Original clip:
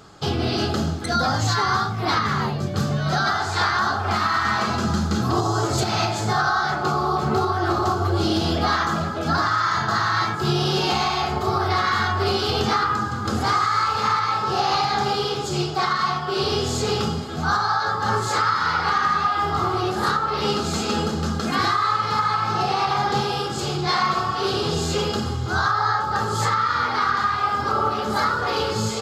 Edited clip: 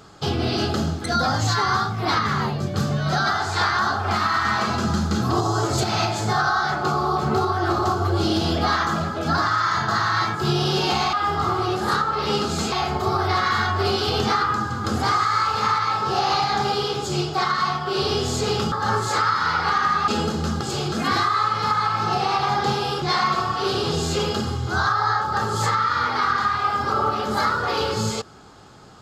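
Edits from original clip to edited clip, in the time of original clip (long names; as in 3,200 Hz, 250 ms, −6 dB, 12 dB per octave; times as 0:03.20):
0:17.13–0:17.92: remove
0:19.28–0:20.87: move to 0:11.13
0:23.50–0:23.81: move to 0:21.40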